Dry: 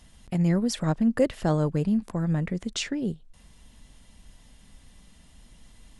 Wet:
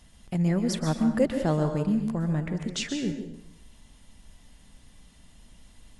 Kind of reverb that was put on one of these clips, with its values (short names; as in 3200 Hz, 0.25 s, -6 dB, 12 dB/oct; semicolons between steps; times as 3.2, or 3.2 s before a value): plate-style reverb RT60 0.73 s, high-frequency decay 0.9×, pre-delay 0.115 s, DRR 6 dB; gain -1.5 dB